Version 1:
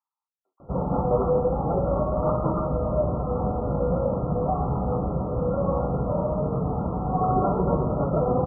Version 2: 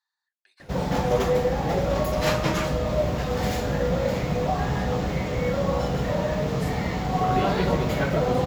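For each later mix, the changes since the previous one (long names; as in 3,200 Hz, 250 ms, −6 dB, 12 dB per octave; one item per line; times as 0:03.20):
master: remove linear-phase brick-wall low-pass 1,400 Hz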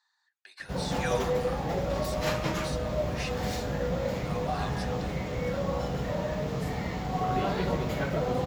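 speech +10.5 dB
background −6.0 dB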